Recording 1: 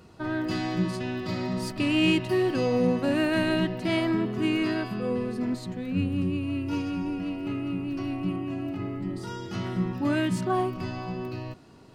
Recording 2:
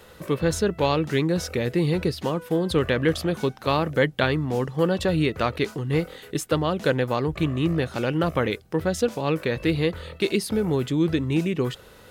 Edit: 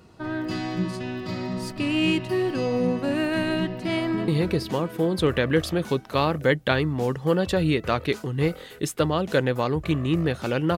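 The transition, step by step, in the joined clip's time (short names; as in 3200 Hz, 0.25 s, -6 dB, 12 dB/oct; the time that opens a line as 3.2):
recording 1
4–4.28 echo throw 0.17 s, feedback 80%, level -9.5 dB
4.28 switch to recording 2 from 1.8 s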